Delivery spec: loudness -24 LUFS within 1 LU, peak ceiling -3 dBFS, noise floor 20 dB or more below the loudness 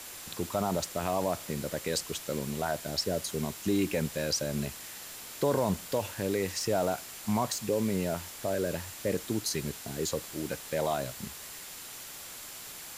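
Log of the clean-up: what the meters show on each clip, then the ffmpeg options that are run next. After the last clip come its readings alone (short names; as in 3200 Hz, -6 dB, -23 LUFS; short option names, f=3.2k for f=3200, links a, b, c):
steady tone 7300 Hz; tone level -53 dBFS; noise floor -45 dBFS; noise floor target -53 dBFS; loudness -32.5 LUFS; peak -15.5 dBFS; loudness target -24.0 LUFS
-> -af "bandreject=f=7.3k:w=30"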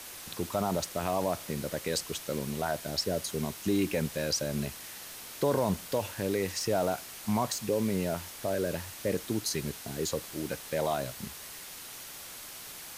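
steady tone none; noise floor -45 dBFS; noise floor target -53 dBFS
-> -af "afftdn=nr=8:nf=-45"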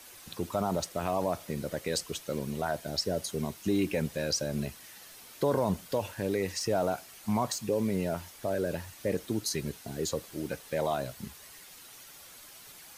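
noise floor -51 dBFS; noise floor target -53 dBFS
-> -af "afftdn=nr=6:nf=-51"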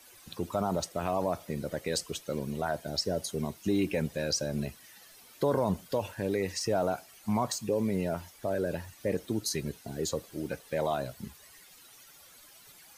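noise floor -55 dBFS; loudness -32.5 LUFS; peak -16.0 dBFS; loudness target -24.0 LUFS
-> -af "volume=8.5dB"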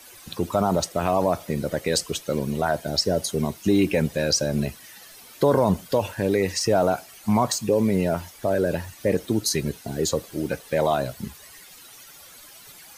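loudness -24.0 LUFS; peak -7.5 dBFS; noise floor -47 dBFS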